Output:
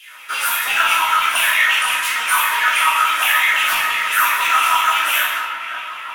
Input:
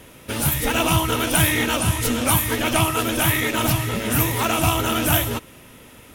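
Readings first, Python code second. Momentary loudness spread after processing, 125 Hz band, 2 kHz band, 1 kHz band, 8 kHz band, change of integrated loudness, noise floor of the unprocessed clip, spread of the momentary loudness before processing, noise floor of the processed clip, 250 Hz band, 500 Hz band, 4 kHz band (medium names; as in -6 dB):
8 LU, under -35 dB, +10.0 dB, +8.0 dB, -0.5 dB, +4.5 dB, -46 dBFS, 4 LU, -31 dBFS, under -20 dB, -12.0 dB, +5.5 dB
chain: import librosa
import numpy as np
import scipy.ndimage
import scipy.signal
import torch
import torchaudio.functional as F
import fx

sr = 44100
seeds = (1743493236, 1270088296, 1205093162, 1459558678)

y = fx.rider(x, sr, range_db=4, speed_s=0.5)
y = fx.low_shelf(y, sr, hz=170.0, db=-6.0)
y = fx.echo_wet_lowpass(y, sr, ms=551, feedback_pct=68, hz=3500.0, wet_db=-11.5)
y = fx.filter_lfo_highpass(y, sr, shape='saw_down', hz=5.9, low_hz=980.0, high_hz=2900.0, q=5.8)
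y = fx.room_shoebox(y, sr, seeds[0], volume_m3=370.0, walls='mixed', distance_m=3.1)
y = y * 10.0 ** (-7.5 / 20.0)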